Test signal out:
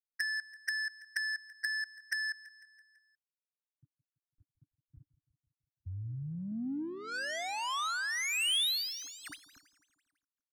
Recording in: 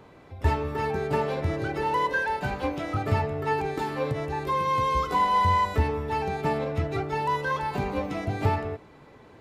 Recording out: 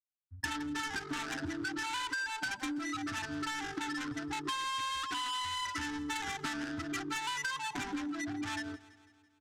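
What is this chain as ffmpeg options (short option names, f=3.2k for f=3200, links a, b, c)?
-filter_complex "[0:a]highpass=f=49:p=1,afftfilt=real='re*gte(hypot(re,im),0.0794)':imag='im*gte(hypot(re,im),0.0794)':win_size=1024:overlap=0.75,asplit=2[a][b];[b]highpass=f=720:p=1,volume=26dB,asoftclip=type=tanh:threshold=-11dB[c];[a][c]amix=inputs=2:normalize=0,lowpass=f=5.2k:p=1,volume=-6dB,firequalizer=gain_entry='entry(110,0);entry(200,-8);entry(290,10);entry(470,-30);entry(680,-13);entry(1500,8);entry(9000,-16)':delay=0.05:min_phase=1,acrossover=split=5200[d][e];[d]alimiter=limit=-12.5dB:level=0:latency=1:release=27[f];[f][e]amix=inputs=2:normalize=0,acompressor=threshold=-30dB:ratio=16,bass=f=250:g=-4,treble=f=4k:g=-2,adynamicsmooth=sensitivity=5.5:basefreq=1.2k,aexciter=amount=5:drive=1.2:freq=3.1k,asplit=2[g][h];[h]aecho=0:1:166|332|498|664|830:0.119|0.0689|0.04|0.0232|0.0134[i];[g][i]amix=inputs=2:normalize=0,volume=-3dB"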